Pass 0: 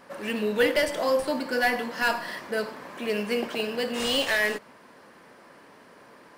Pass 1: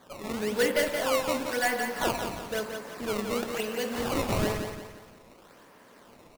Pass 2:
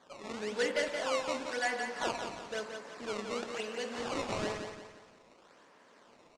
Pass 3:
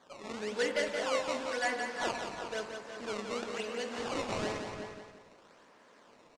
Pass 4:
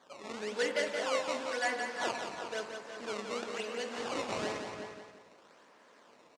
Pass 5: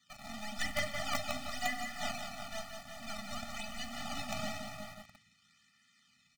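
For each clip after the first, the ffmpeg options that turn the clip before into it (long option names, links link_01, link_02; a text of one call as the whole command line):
ffmpeg -i in.wav -filter_complex "[0:a]acrusher=samples=16:mix=1:aa=0.000001:lfo=1:lforange=25.6:lforate=1,asplit=2[link_01][link_02];[link_02]aecho=0:1:174|348|522|696|870:0.473|0.194|0.0795|0.0326|0.0134[link_03];[link_01][link_03]amix=inputs=2:normalize=0,volume=-3.5dB" out.wav
ffmpeg -i in.wav -af "lowpass=frequency=7700:width=0.5412,lowpass=frequency=7700:width=1.3066,lowshelf=frequency=180:gain=-12,volume=-5dB" out.wav
ffmpeg -i in.wav -filter_complex "[0:a]asplit=2[link_01][link_02];[link_02]adelay=367.3,volume=-8dB,highshelf=frequency=4000:gain=-8.27[link_03];[link_01][link_03]amix=inputs=2:normalize=0" out.wav
ffmpeg -i in.wav -af "highpass=frequency=200:poles=1" out.wav
ffmpeg -i in.wav -filter_complex "[0:a]acrossover=split=180|1700[link_01][link_02][link_03];[link_02]acrusher=bits=5:dc=4:mix=0:aa=0.000001[link_04];[link_01][link_04][link_03]amix=inputs=3:normalize=0,afftfilt=real='re*eq(mod(floor(b*sr/1024/290),2),0)':imag='im*eq(mod(floor(b*sr/1024/290),2),0)':win_size=1024:overlap=0.75,volume=2.5dB" out.wav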